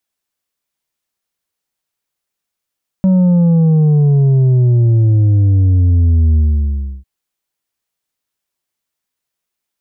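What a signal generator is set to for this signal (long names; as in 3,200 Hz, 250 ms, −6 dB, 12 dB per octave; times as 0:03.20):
bass drop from 190 Hz, over 4.00 s, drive 5 dB, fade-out 0.68 s, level −8 dB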